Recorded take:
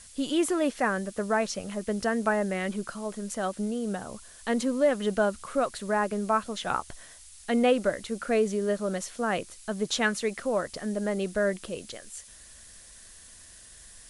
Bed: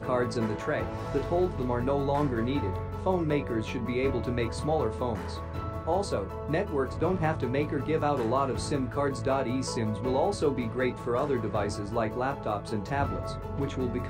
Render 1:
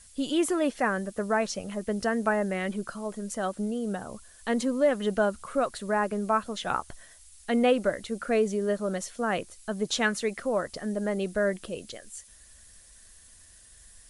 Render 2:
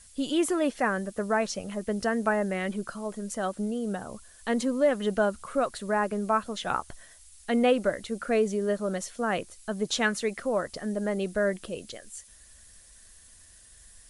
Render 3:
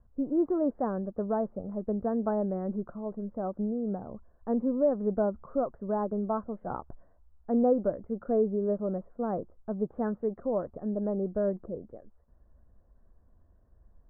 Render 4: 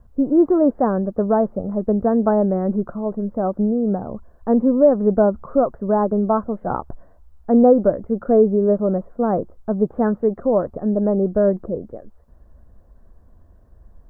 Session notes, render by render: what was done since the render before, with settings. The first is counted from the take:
broadband denoise 6 dB, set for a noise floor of −50 dBFS
no processing that can be heard
Bessel low-pass filter 660 Hz, order 8
level +12 dB; brickwall limiter −3 dBFS, peak gain reduction 1 dB

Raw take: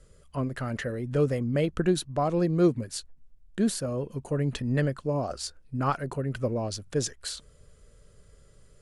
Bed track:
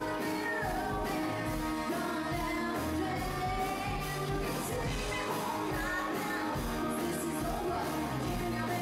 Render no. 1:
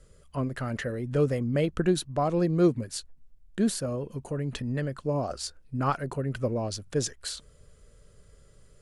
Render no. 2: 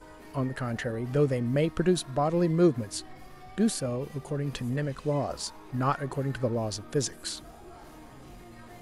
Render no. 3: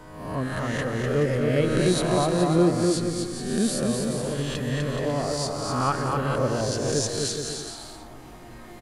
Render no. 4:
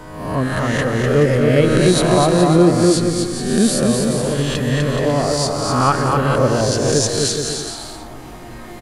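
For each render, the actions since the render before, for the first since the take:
0:03.95–0:04.95: downward compressor 2 to 1, threshold −29 dBFS
mix in bed track −15 dB
peak hold with a rise ahead of every peak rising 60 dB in 0.96 s; on a send: bouncing-ball delay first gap 250 ms, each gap 0.7×, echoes 5
level +9 dB; brickwall limiter −3 dBFS, peak gain reduction 2 dB

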